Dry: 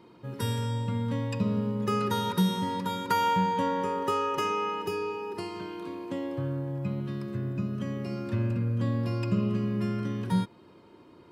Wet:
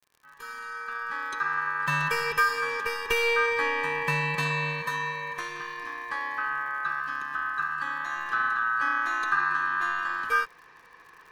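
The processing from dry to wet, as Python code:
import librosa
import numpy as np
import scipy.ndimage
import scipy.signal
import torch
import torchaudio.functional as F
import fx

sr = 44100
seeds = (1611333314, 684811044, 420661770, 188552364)

y = fx.fade_in_head(x, sr, length_s=1.93)
y = y * np.sin(2.0 * np.pi * 1400.0 * np.arange(len(y)) / sr)
y = fx.dmg_crackle(y, sr, seeds[0], per_s=78.0, level_db=-49.0)
y = F.gain(torch.from_numpy(y), 4.0).numpy()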